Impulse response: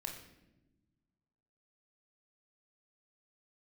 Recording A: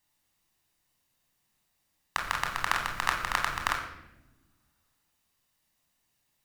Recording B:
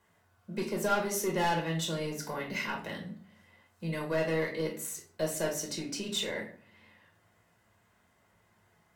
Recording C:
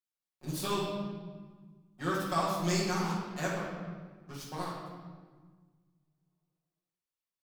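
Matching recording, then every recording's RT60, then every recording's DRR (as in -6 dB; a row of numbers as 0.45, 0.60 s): A; not exponential, 0.50 s, 1.5 s; 1.5, -1.0, -8.5 dB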